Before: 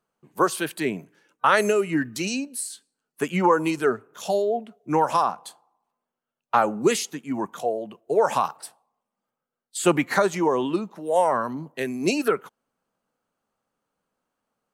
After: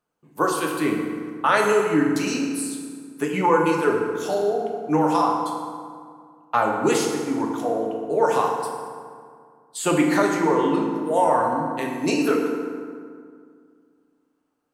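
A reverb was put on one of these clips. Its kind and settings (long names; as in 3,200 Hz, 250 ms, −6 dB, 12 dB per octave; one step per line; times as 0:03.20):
feedback delay network reverb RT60 2.1 s, low-frequency decay 1.2×, high-frequency decay 0.55×, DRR −0.5 dB
level −2 dB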